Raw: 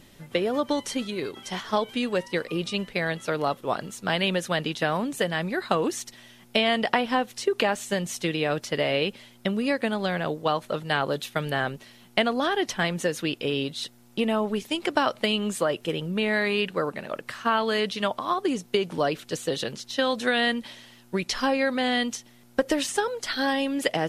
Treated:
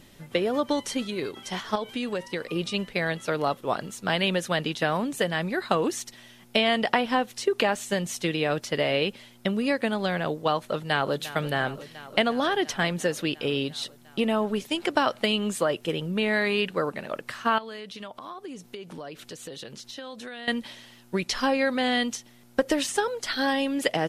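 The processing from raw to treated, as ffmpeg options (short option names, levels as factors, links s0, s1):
-filter_complex "[0:a]asettb=1/sr,asplit=3[s0][s1][s2];[s0]atrim=end=1.754[s3];[s1]atrim=start=1.75:end=2.56,asetpts=PTS-STARTPTS,afade=t=in:d=0.004:c=qsin,afade=t=out:st=0.806:d=0.004:c=qsin,acompressor=threshold=0.0562:ratio=5:attack=3.2:release=140:knee=1:detection=peak[s4];[s2]atrim=start=2.556[s5];[s3][s4]acrossfade=d=0.004:c1=hsin:c2=qsin[s6];[s6][s5]acrossfade=d=0.004:c1=qsin:c2=hsin,asplit=2[s7][s8];[s8]afade=t=in:st=10.62:d=0.01,afade=t=out:st=11.22:d=0.01,aecho=0:1:350|700|1050|1400|1750|2100|2450|2800|3150|3500|3850|4200:0.188365|0.150692|0.120554|0.0964428|0.0771543|0.0617234|0.0493787|0.039503|0.0316024|0.0252819|0.0202255|0.0161804[s9];[s7][s9]amix=inputs=2:normalize=0,asettb=1/sr,asplit=3[s10][s11][s12];[s10]atrim=end=17.584[s13];[s11]atrim=start=17.58:end=20.48,asetpts=PTS-STARTPTS,afade=t=in:d=0.004:c=qsin,afade=t=out:st=2.896:d=0.004:c=qsin,acompressor=threshold=0.0126:ratio=4:attack=3.2:release=140:knee=1:detection=peak[s14];[s12]atrim=start=20.476[s15];[s13][s14]acrossfade=d=0.004:c1=hsin:c2=qsin[s16];[s16][s15]acrossfade=d=0.004:c1=qsin:c2=hsin"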